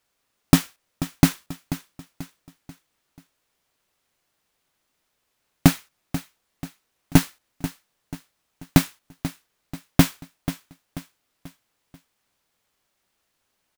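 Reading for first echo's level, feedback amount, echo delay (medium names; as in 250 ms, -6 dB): -13.0 dB, 43%, 487 ms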